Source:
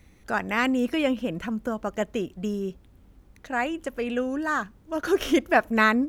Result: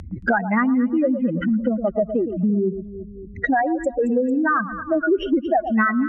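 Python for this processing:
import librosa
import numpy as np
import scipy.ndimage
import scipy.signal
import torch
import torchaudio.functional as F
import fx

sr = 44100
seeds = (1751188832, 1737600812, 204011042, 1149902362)

y = fx.spec_expand(x, sr, power=3.6)
y = scipy.signal.sosfilt(scipy.signal.cheby1(2, 1.0, 8300.0, 'lowpass', fs=sr, output='sos'), y)
y = fx.echo_alternate(y, sr, ms=112, hz=1100.0, feedback_pct=53, wet_db=-11.0)
y = fx.band_squash(y, sr, depth_pct=100)
y = y * 10.0 ** (6.5 / 20.0)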